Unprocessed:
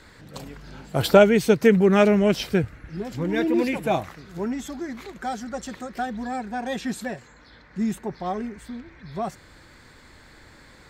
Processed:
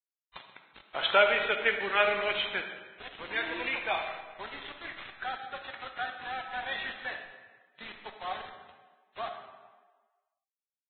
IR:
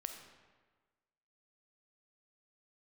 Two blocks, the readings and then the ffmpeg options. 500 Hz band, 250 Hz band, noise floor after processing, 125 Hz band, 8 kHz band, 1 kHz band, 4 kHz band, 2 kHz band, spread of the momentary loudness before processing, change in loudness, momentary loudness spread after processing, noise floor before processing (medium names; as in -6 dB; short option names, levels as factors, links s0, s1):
-12.0 dB, -25.5 dB, under -85 dBFS, -28.0 dB, under -40 dB, -4.5 dB, +0.5 dB, +1.0 dB, 22 LU, -8.0 dB, 20 LU, -51 dBFS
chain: -filter_complex "[0:a]highpass=1200,aresample=8000,acrusher=bits=6:mix=0:aa=0.000001,aresample=44100[s0];[1:a]atrim=start_sample=2205[s1];[s0][s1]afir=irnorm=-1:irlink=0,volume=1.5" -ar 16000 -c:a libvorbis -b:a 16k